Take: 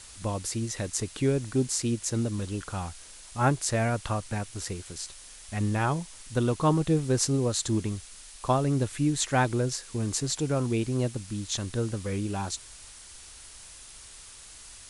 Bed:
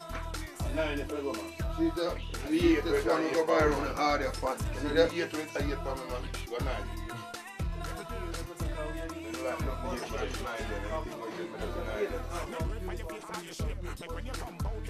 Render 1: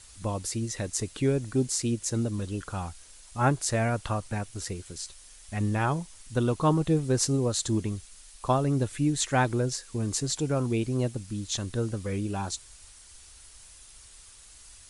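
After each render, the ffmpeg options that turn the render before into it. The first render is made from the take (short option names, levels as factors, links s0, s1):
-af "afftdn=nr=6:nf=-48"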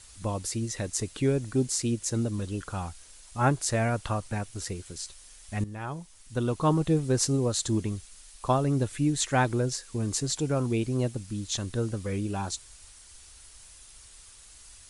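-filter_complex "[0:a]asplit=2[s0][s1];[s0]atrim=end=5.64,asetpts=PTS-STARTPTS,afade=t=out:st=5.636:d=0.004:c=hsin:silence=0.188365[s2];[s1]atrim=start=5.64,asetpts=PTS-STARTPTS,afade=t=in:d=1.13:silence=0.188365[s3];[s2][s3]concat=n=2:v=0:a=1"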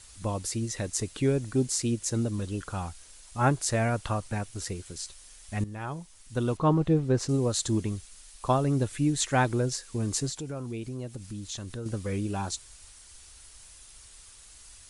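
-filter_complex "[0:a]asettb=1/sr,asplit=3[s0][s1][s2];[s0]atrim=end=6.574[s3];[s1]atrim=start=6.57:end=7.29,asetpts=PTS-STARTPTS,afade=t=in:d=0.004:c=qsin,afade=t=out:st=0.716:d=0.004:c=qsin,aemphasis=mode=reproduction:type=75fm[s4];[s2]atrim=start=7.286[s5];[s3][s4]acrossfade=d=0.004:c1=hsin:c2=qsin[s6];[s6][s5]acrossfade=d=0.004:c1=qsin:c2=hsin,asettb=1/sr,asplit=3[s7][s8][s9];[s7]atrim=end=10.294[s10];[s8]atrim=start=10.29:end=11.86,asetpts=PTS-STARTPTS,afade=t=in:d=0.004:c=qsin,afade=t=out:st=1.566:d=0.004:c=qsin,acompressor=threshold=0.0158:ratio=2.5:attack=3.2:release=140:knee=1:detection=peak[s11];[s9]atrim=start=11.856[s12];[s10][s11]acrossfade=d=0.004:c1=hsin:c2=qsin[s13];[s13][s12]acrossfade=d=0.004:c1=qsin:c2=hsin"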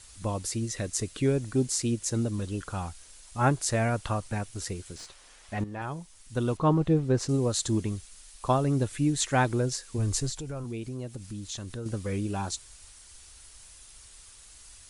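-filter_complex "[0:a]asettb=1/sr,asplit=3[s0][s1][s2];[s0]atrim=end=0.654[s3];[s1]atrim=start=0.65:end=1.26,asetpts=PTS-STARTPTS,afade=t=in:d=0.004:c=qsin,afade=t=out:st=0.606:d=0.004:c=qsin,bandreject=f=870:w=5.4[s4];[s2]atrim=start=1.256[s5];[s3][s4]acrossfade=d=0.004:c1=hsin:c2=qsin[s6];[s6][s5]acrossfade=d=0.004:c1=qsin:c2=hsin,asettb=1/sr,asplit=3[s7][s8][s9];[s7]atrim=end=4.964[s10];[s8]atrim=start=4.96:end=5.82,asetpts=PTS-STARTPTS,afade=t=in:d=0.004:c=qsin,afade=t=out:st=0.856:d=0.004:c=qsin,asplit=2[s11][s12];[s12]highpass=f=720:p=1,volume=7.08,asoftclip=type=tanh:threshold=0.106[s13];[s11][s13]amix=inputs=2:normalize=0,lowpass=f=1000:p=1,volume=0.501[s14];[s9]atrim=start=5.816[s15];[s10][s14]acrossfade=d=0.004:c1=hsin:c2=qsin[s16];[s16][s15]acrossfade=d=0.004:c1=qsin:c2=hsin,asplit=3[s17][s18][s19];[s17]afade=t=out:st=9.97:d=0.02[s20];[s18]asubboost=boost=5.5:cutoff=79,afade=t=in:st=9.97:d=0.02,afade=t=out:st=10.63:d=0.02[s21];[s19]afade=t=in:st=10.63:d=0.02[s22];[s20][s21][s22]amix=inputs=3:normalize=0"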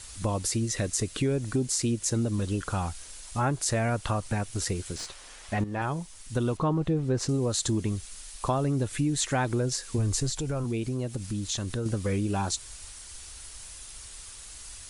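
-filter_complex "[0:a]asplit=2[s0][s1];[s1]alimiter=limit=0.0841:level=0:latency=1:release=26,volume=1.19[s2];[s0][s2]amix=inputs=2:normalize=0,acompressor=threshold=0.0501:ratio=2.5"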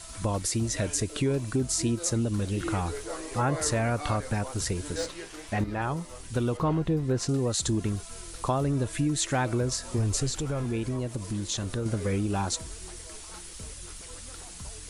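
-filter_complex "[1:a]volume=0.335[s0];[0:a][s0]amix=inputs=2:normalize=0"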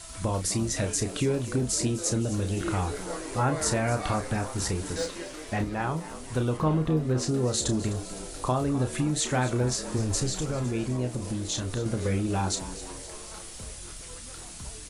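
-filter_complex "[0:a]asplit=2[s0][s1];[s1]adelay=32,volume=0.398[s2];[s0][s2]amix=inputs=2:normalize=0,asplit=7[s3][s4][s5][s6][s7][s8][s9];[s4]adelay=255,afreqshift=88,volume=0.178[s10];[s5]adelay=510,afreqshift=176,volume=0.107[s11];[s6]adelay=765,afreqshift=264,volume=0.0638[s12];[s7]adelay=1020,afreqshift=352,volume=0.0385[s13];[s8]adelay=1275,afreqshift=440,volume=0.0232[s14];[s9]adelay=1530,afreqshift=528,volume=0.0138[s15];[s3][s10][s11][s12][s13][s14][s15]amix=inputs=7:normalize=0"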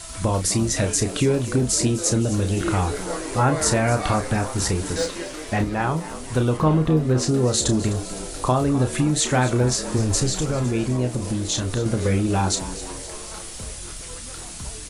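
-af "volume=2.11"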